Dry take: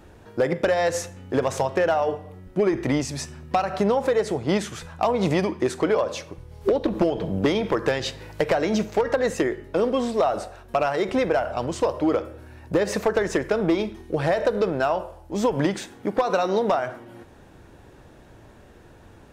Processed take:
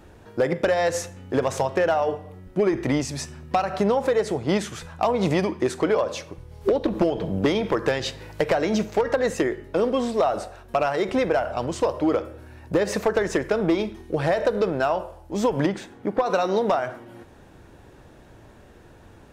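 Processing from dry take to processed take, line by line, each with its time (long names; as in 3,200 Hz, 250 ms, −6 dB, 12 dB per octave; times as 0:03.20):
0:15.66–0:16.26: high-shelf EQ 3,100 Hz −9.5 dB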